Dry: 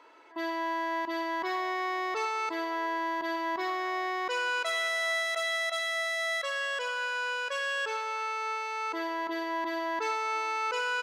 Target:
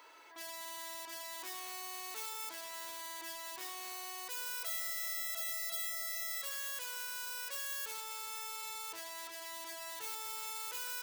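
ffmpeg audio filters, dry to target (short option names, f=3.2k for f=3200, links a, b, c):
-af "aeval=exprs='(tanh(178*val(0)+0.15)-tanh(0.15))/178':c=same,aemphasis=mode=production:type=riaa,bandreject=f=165.3:t=h:w=4,bandreject=f=330.6:t=h:w=4,bandreject=f=495.9:t=h:w=4,volume=-2dB"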